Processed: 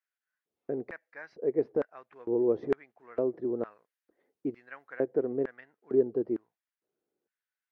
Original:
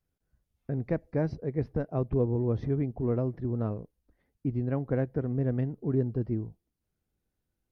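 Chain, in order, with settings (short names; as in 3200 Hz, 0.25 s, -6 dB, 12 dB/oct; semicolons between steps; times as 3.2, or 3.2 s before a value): high shelf 2300 Hz -10.5 dB, from 3.71 s -5 dB, from 4.93 s -11.5 dB; LFO high-pass square 1.1 Hz 390–1700 Hz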